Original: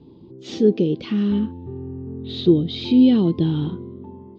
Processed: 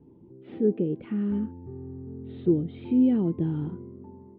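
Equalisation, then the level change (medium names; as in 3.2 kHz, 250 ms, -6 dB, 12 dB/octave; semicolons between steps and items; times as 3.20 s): low-pass 2.2 kHz 24 dB/octave; distance through air 190 m; band-stop 1.1 kHz, Q 10; -7.0 dB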